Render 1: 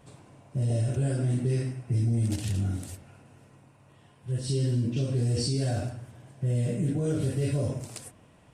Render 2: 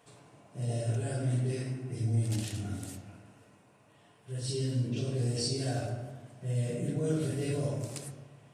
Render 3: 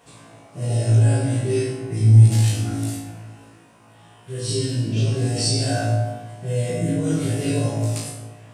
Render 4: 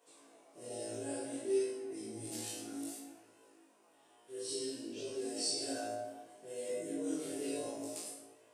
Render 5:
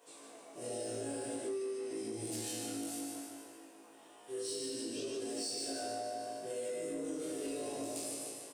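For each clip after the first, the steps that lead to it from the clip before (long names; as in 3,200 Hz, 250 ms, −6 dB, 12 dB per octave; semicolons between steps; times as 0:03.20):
high-pass filter 680 Hz 6 dB per octave; on a send at −3 dB: high-shelf EQ 5,700 Hz −11.5 dB + convolution reverb RT60 1.2 s, pre-delay 3 ms; on the sum: level −1.5 dB
flutter between parallel walls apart 3.1 metres, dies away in 0.56 s; level +7.5 dB
Chebyshev high-pass filter 330 Hz, order 3; parametric band 1,800 Hz −8.5 dB 3 octaves; chorus effect 0.59 Hz, delay 20 ms, depth 6.5 ms; level −6 dB
repeating echo 149 ms, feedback 53%, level −5 dB; in parallel at −3.5 dB: soft clipping −39 dBFS, distortion −8 dB; on the sum: downward compressor 6 to 1, threshold −39 dBFS, peak gain reduction 12 dB; level +2 dB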